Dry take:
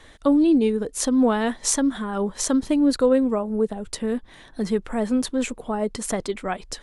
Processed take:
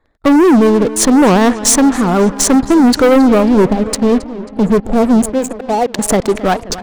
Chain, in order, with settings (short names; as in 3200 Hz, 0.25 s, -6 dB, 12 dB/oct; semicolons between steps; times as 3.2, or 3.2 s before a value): Wiener smoothing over 15 samples; 5.33–5.99 weighting filter A; 4.2–5.84 spectral gain 880–6400 Hz -27 dB; 3.16–3.76 low shelf 190 Hz +6.5 dB; sample leveller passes 5; on a send: darkening echo 0.27 s, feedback 64%, low-pass 4900 Hz, level -15.5 dB; on the sum: record warp 78 rpm, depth 250 cents; gain -1.5 dB